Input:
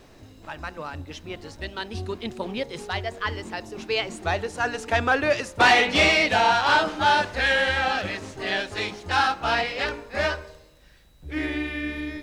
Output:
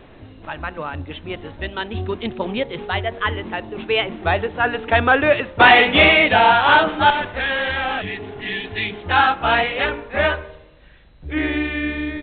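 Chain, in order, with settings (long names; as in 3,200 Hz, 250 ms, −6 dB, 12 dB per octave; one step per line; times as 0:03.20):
0:07.10–0:08.64: tube saturation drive 25 dB, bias 0.55
0:08.04–0:08.94: healed spectral selection 310–1,700 Hz after
downsampling to 8,000 Hz
level +6.5 dB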